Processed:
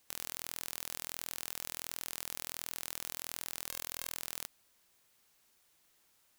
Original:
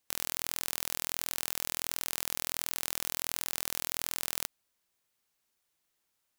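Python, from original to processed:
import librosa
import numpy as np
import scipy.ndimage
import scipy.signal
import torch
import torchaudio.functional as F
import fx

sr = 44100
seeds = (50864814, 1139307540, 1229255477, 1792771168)

y = fx.spec_clip(x, sr, under_db=26, at=(3.68, 4.16), fade=0.02)
y = 10.0 ** (-16.5 / 20.0) * (np.abs((y / 10.0 ** (-16.5 / 20.0) + 3.0) % 4.0 - 2.0) - 1.0)
y = y * librosa.db_to_amplitude(9.0)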